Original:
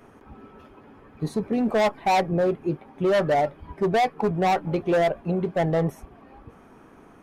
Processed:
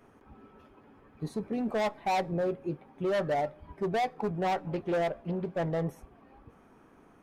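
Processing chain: on a send at -22 dB: reverb RT60 0.70 s, pre-delay 3 ms; 4.43–5.71 on the sum: Doppler distortion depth 0.29 ms; gain -8 dB

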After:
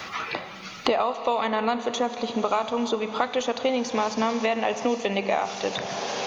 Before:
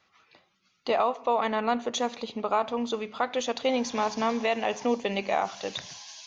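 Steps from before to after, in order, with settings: Schroeder reverb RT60 3.6 s, combs from 28 ms, DRR 12 dB; three-band squash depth 100%; gain +1.5 dB

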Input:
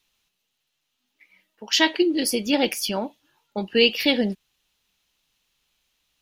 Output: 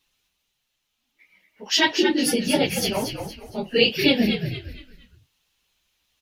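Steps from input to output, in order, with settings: phase scrambler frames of 50 ms; frequency-shifting echo 0.232 s, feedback 36%, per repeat -78 Hz, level -7 dB

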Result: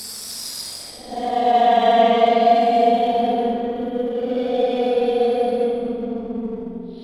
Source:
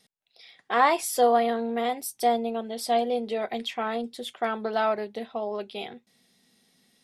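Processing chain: Paulstretch 15×, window 0.05 s, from 2.81; in parallel at -3 dB: backlash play -26.5 dBFS; on the sum: spring tank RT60 2.2 s, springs 44 ms, chirp 35 ms, DRR 2 dB

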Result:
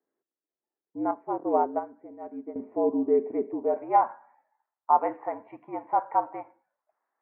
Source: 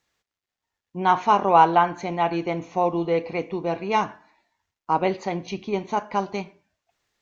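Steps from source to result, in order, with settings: band-pass sweep 420 Hz -> 970 Hz, 3.39–4.09; mistuned SSB -65 Hz 270–2100 Hz; 1.11–2.56 upward expander 2.5:1, over -31 dBFS; gain +3 dB

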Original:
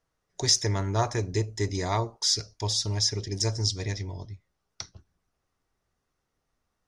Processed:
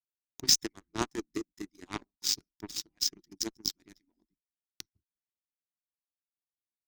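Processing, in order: median-filter separation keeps percussive; added harmonics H 7 -17 dB, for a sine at -8.5 dBFS; resonant low shelf 410 Hz +8 dB, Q 3

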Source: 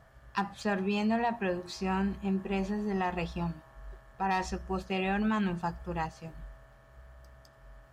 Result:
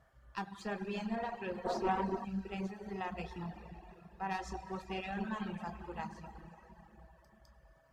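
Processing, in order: plate-style reverb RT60 3.6 s, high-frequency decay 0.8×, DRR 1.5 dB; spectral gain 1.66–2.25, 220–1300 Hz +11 dB; tube stage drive 17 dB, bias 0.6; reverb removal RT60 1.1 s; gain -6 dB

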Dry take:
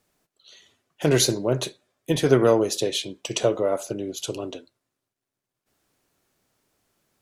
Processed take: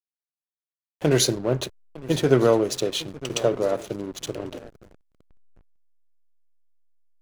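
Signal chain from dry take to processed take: on a send: swung echo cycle 1.209 s, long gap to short 3:1, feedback 34%, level -16.5 dB; on the sum: backlash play -28.5 dBFS

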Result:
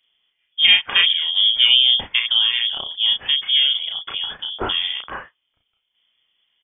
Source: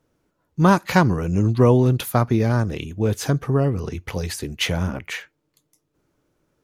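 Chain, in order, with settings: inverted band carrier 3400 Hz; doubler 34 ms -3 dB; gain -1 dB

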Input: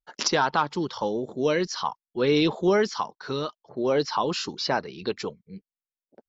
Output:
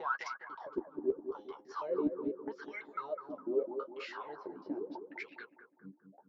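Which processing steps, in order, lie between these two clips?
slices in reverse order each 0.165 s, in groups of 3; dynamic EQ 1400 Hz, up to -3 dB, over -34 dBFS, Q 0.94; compressor 2.5:1, threshold -28 dBFS, peak gain reduction 7.5 dB; wah 0.81 Hz 270–2200 Hz, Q 21; flipped gate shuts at -32 dBFS, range -29 dB; flange 0.37 Hz, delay 7.8 ms, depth 6.3 ms, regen -30%; harmoniser -5 st -16 dB; on a send: analogue delay 0.204 s, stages 2048, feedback 45%, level -8 dB; on the sum: gain +13.5 dB

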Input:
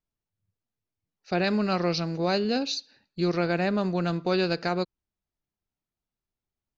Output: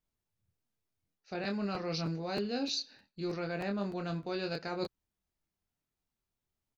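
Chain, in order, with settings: reverse; compressor 10:1, threshold -33 dBFS, peak gain reduction 13 dB; reverse; doubler 25 ms -5 dB; crackling interface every 0.31 s, samples 512, repeat, from 0.81

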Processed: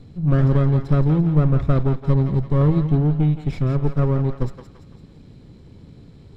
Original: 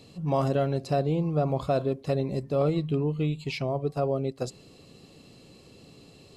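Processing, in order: minimum comb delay 0.54 ms; RIAA curve playback; thinning echo 0.169 s, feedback 51%, high-pass 750 Hz, level -7 dB

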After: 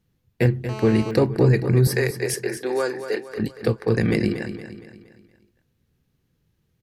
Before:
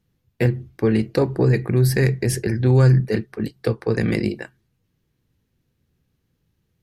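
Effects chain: 1.87–3.29 HPF 370 Hz 24 dB/oct; feedback echo 0.233 s, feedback 45%, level -10.5 dB; 0.69–1.11 GSM buzz -34 dBFS

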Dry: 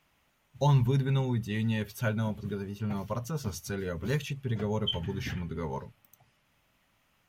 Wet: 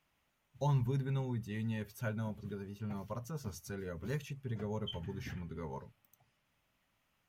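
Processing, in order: dynamic EQ 3400 Hz, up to -5 dB, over -55 dBFS, Q 1.5; gain -8 dB

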